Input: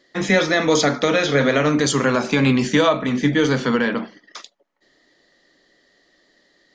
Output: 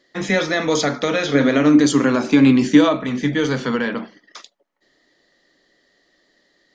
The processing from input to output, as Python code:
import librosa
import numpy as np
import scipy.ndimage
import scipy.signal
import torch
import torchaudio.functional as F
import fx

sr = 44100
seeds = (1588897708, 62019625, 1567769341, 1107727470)

y = fx.small_body(x, sr, hz=(290.0,), ring_ms=45, db=11, at=(1.33, 2.96))
y = y * 10.0 ** (-2.0 / 20.0)